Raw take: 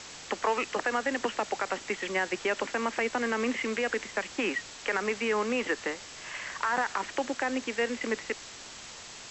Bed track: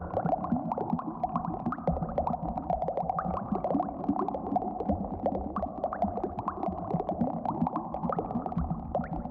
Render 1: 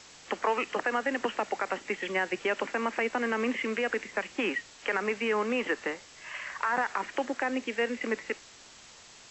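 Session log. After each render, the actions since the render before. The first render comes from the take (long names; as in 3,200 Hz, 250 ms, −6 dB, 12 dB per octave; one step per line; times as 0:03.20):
noise reduction from a noise print 7 dB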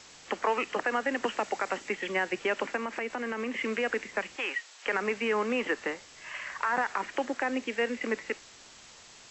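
0:01.23–0:01.89: high-shelf EQ 6,300 Hz +6.5 dB
0:02.76–0:03.56: downward compressor 2.5 to 1, threshold −31 dBFS
0:04.36–0:04.86: high-pass filter 660 Hz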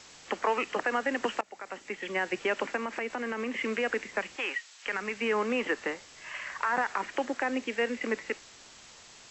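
0:01.41–0:02.33: fade in, from −22.5 dB
0:04.57–0:05.19: parametric band 510 Hz −7.5 dB 2.5 octaves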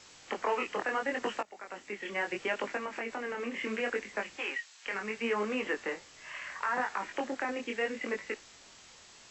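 chorus effect 0.72 Hz, delay 19 ms, depth 6.2 ms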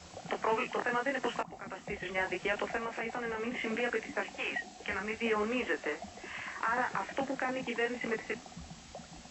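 mix in bed track −17 dB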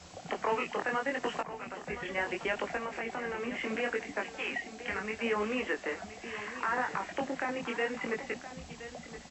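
single-tap delay 1,020 ms −13 dB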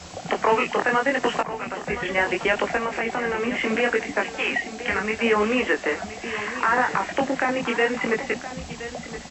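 level +11 dB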